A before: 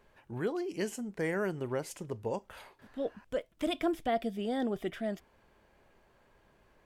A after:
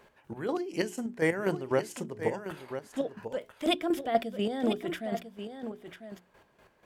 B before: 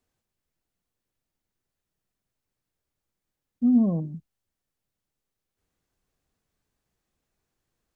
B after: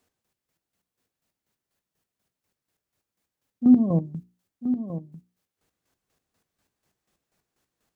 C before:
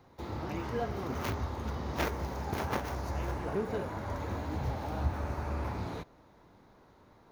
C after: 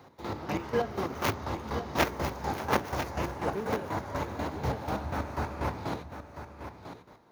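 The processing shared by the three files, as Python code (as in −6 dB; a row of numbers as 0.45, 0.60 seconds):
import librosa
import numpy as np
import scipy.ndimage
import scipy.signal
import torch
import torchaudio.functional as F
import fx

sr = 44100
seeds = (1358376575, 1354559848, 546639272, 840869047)

p1 = fx.chopper(x, sr, hz=4.1, depth_pct=65, duty_pct=35)
p2 = fx.highpass(p1, sr, hz=130.0, slope=6)
p3 = fx.hum_notches(p2, sr, base_hz=60, count=7)
p4 = p3 + fx.echo_single(p3, sr, ms=996, db=-10.0, dry=0)
y = F.gain(torch.from_numpy(p4), 8.0).numpy()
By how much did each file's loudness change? +3.0, +0.5, +3.0 LU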